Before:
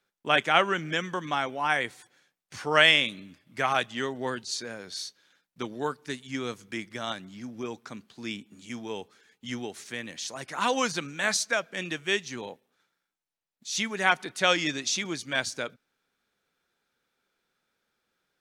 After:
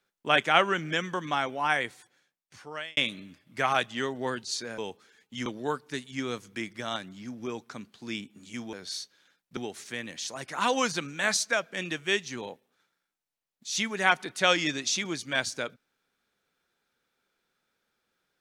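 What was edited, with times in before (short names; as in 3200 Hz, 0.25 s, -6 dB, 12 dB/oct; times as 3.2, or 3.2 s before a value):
1.66–2.97 fade out
4.78–5.62 swap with 8.89–9.57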